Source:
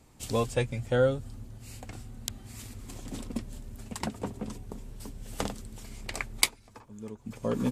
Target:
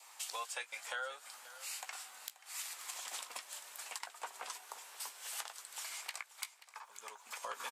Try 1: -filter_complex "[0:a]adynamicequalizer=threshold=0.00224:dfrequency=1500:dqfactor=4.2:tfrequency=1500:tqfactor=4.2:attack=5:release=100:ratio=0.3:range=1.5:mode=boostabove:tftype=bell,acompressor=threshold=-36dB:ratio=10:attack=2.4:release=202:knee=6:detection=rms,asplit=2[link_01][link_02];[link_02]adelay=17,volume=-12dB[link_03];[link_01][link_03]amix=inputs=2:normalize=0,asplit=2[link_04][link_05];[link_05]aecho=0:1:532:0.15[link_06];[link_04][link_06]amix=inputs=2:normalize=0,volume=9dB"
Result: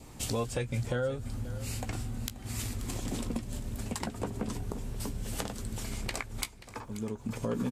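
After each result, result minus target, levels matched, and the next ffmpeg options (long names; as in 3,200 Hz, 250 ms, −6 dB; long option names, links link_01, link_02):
downward compressor: peak gain reduction −8 dB; 1,000 Hz band −5.0 dB
-filter_complex "[0:a]adynamicequalizer=threshold=0.00224:dfrequency=1500:dqfactor=4.2:tfrequency=1500:tqfactor=4.2:attack=5:release=100:ratio=0.3:range=1.5:mode=boostabove:tftype=bell,acompressor=threshold=-45dB:ratio=10:attack=2.4:release=202:knee=6:detection=rms,asplit=2[link_01][link_02];[link_02]adelay=17,volume=-12dB[link_03];[link_01][link_03]amix=inputs=2:normalize=0,asplit=2[link_04][link_05];[link_05]aecho=0:1:532:0.15[link_06];[link_04][link_06]amix=inputs=2:normalize=0,volume=9dB"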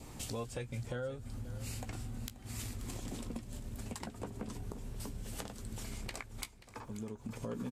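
1,000 Hz band −5.5 dB
-filter_complex "[0:a]adynamicequalizer=threshold=0.00224:dfrequency=1500:dqfactor=4.2:tfrequency=1500:tqfactor=4.2:attack=5:release=100:ratio=0.3:range=1.5:mode=boostabove:tftype=bell,highpass=frequency=870:width=0.5412,highpass=frequency=870:width=1.3066,acompressor=threshold=-45dB:ratio=10:attack=2.4:release=202:knee=6:detection=rms,asplit=2[link_01][link_02];[link_02]adelay=17,volume=-12dB[link_03];[link_01][link_03]amix=inputs=2:normalize=0,asplit=2[link_04][link_05];[link_05]aecho=0:1:532:0.15[link_06];[link_04][link_06]amix=inputs=2:normalize=0,volume=9dB"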